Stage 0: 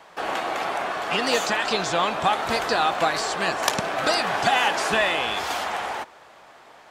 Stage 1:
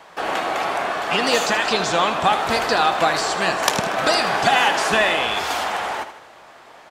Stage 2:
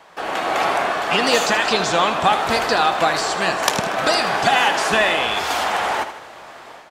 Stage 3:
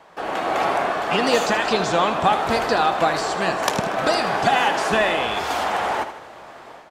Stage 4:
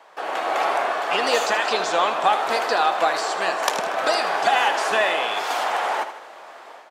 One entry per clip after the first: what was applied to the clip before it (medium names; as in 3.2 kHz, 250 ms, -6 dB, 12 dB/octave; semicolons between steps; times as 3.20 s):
feedback delay 78 ms, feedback 50%, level -11.5 dB; trim +3.5 dB
level rider gain up to 9 dB; trim -2.5 dB
tilt shelf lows +3.5 dB, about 1.2 kHz; trim -2.5 dB
high-pass 470 Hz 12 dB/octave